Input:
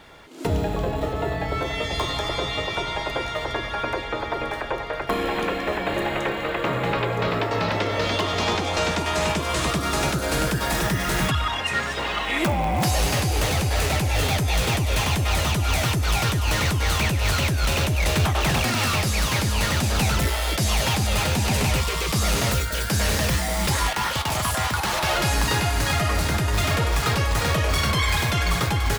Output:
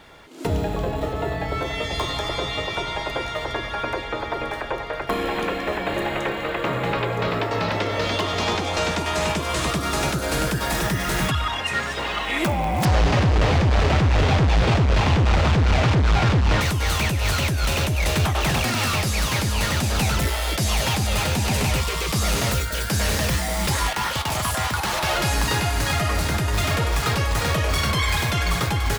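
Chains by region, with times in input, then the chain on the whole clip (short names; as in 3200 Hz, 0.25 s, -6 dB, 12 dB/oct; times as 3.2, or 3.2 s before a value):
12.85–16.61 half-waves squared off + air absorption 140 m
whole clip: dry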